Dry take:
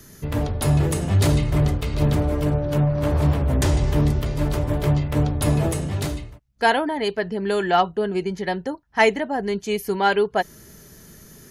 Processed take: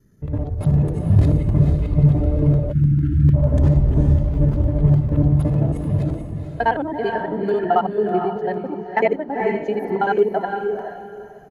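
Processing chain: local time reversal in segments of 55 ms; echo 0.441 s -16.5 dB; in parallel at -1.5 dB: compressor 6:1, threshold -27 dBFS, peak gain reduction 14 dB; on the sum: high shelf 3500 Hz -8 dB; short-mantissa float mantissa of 4-bit; on a send: diffused feedback echo 0.463 s, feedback 40%, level -3.5 dB; on the sum: spectral delete 2.72–3.34, 360–1300 Hz; crackling interface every 0.15 s, samples 64, zero, from 0.59; spectral expander 1.5:1

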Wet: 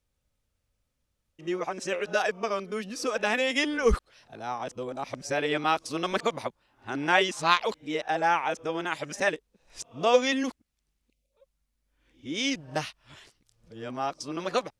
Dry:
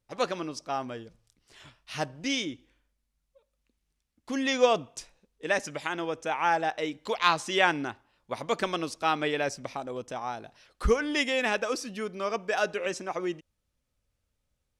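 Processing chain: whole clip reversed; spectral delete 11.1–11.32, 760–2000 Hz; gain +1 dB

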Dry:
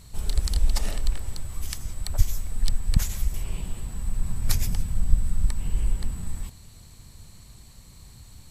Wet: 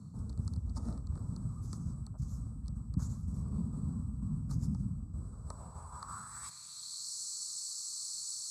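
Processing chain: EQ curve 140 Hz 0 dB, 210 Hz -11 dB, 310 Hz -13 dB, 730 Hz -8 dB, 1200 Hz +4 dB, 1900 Hz -18 dB, 2900 Hz -20 dB, 4300 Hz +1 dB, 8400 Hz +11 dB, 14000 Hz -3 dB; reverse; compressor 6:1, threshold -26 dBFS, peak gain reduction 17 dB; reverse; band-pass sweep 210 Hz -> 5100 Hz, 4.9–7.11; frequency shift +33 Hz; notch 3000 Hz, Q 6.1; gain +15 dB

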